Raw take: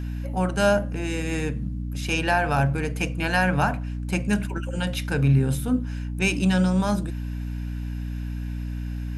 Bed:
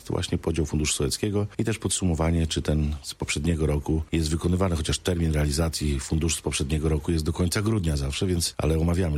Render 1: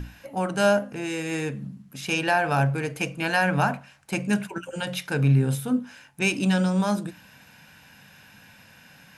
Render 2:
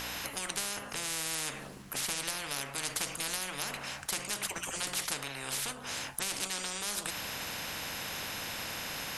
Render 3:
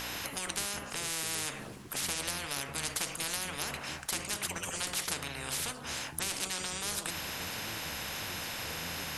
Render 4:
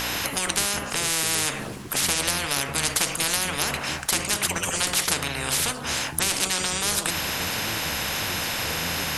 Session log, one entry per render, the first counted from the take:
hum notches 60/120/180/240/300 Hz
compression, threshold -26 dBFS, peak gain reduction 10.5 dB; spectrum-flattening compressor 10:1
add bed -26 dB
trim +11 dB

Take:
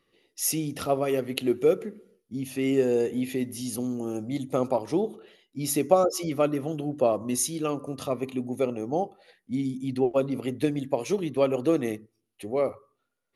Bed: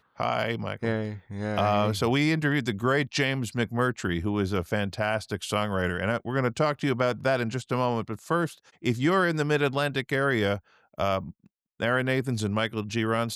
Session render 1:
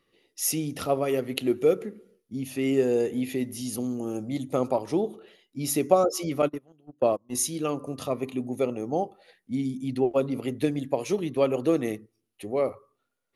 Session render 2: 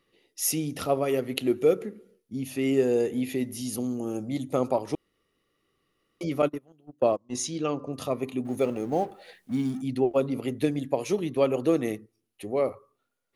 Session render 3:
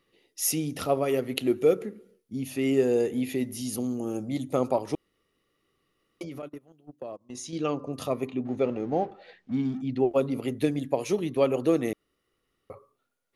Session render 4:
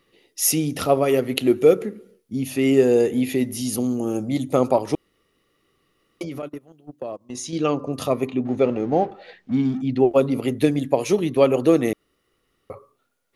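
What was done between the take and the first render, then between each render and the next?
6.42–7.35 s: gate -26 dBFS, range -29 dB
4.95–6.21 s: room tone; 7.11–7.92 s: low-pass 9.3 kHz -> 5.1 kHz 24 dB/octave; 8.45–9.82 s: companding laws mixed up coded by mu
6.22–7.53 s: compression 5:1, threshold -36 dBFS; 8.27–10.00 s: distance through air 160 m; 11.93–12.70 s: room tone
trim +7 dB; peak limiter -1 dBFS, peak gain reduction 1 dB

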